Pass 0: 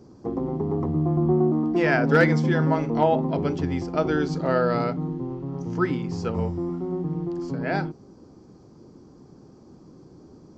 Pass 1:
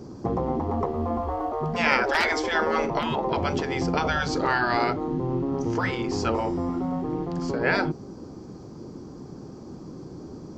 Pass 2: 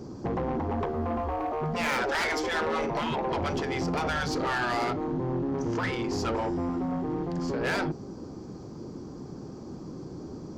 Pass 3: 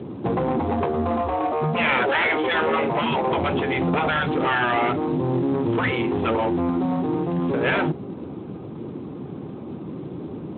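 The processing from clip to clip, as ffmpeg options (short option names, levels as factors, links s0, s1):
-af "afftfilt=real='re*lt(hypot(re,im),0.224)':imag='im*lt(hypot(re,im),0.224)':win_size=1024:overlap=0.75,volume=2.66"
-af "asoftclip=type=tanh:threshold=0.0631"
-af "aexciter=amount=1.7:drive=0.8:freq=2300,volume=2.24" -ar 8000 -c:a libspeex -b:a 15k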